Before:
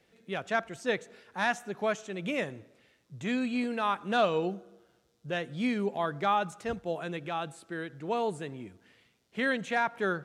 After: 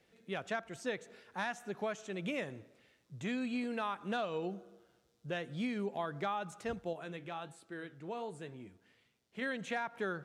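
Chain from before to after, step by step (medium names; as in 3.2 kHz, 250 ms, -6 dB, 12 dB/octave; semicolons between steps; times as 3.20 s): compression 6:1, threshold -30 dBFS, peak gain reduction 9.5 dB; 6.93–9.42 s: flange 1.4 Hz, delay 7.1 ms, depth 5 ms, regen -74%; trim -3 dB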